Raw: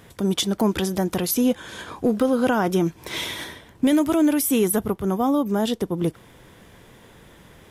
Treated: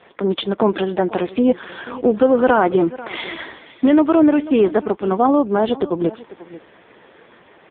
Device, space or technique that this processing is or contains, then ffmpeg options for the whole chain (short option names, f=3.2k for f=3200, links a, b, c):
satellite phone: -af "highpass=330,lowpass=3.2k,aecho=1:1:491:0.133,volume=9dB" -ar 8000 -c:a libopencore_amrnb -b:a 5150